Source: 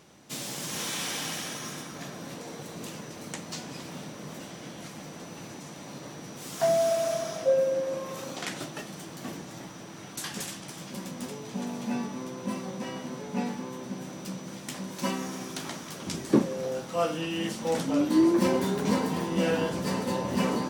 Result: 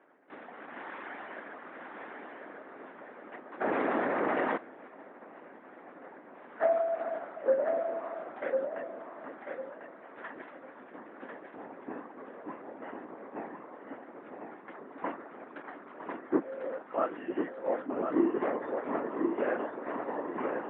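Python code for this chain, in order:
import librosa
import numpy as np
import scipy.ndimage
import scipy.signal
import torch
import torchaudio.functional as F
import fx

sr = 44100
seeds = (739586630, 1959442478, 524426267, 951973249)

y = fx.tracing_dist(x, sr, depth_ms=0.12)
y = fx.low_shelf(y, sr, hz=430.0, db=-4.5)
y = y + 10.0 ** (-11.5 / 20.0) * np.pad(y, (int(957 * sr / 1000.0), 0))[:len(y)]
y = fx.dereverb_blind(y, sr, rt60_s=0.78)
y = fx.lpc_vocoder(y, sr, seeds[0], excitation='whisper', order=10)
y = scipy.signal.sosfilt(scipy.signal.cheby1(3, 1.0, [260.0, 1800.0], 'bandpass', fs=sr, output='sos'), y)
y = fx.echo_feedback(y, sr, ms=1047, feedback_pct=23, wet_db=-5.5)
y = fx.env_flatten(y, sr, amount_pct=70, at=(3.6, 4.56), fade=0.02)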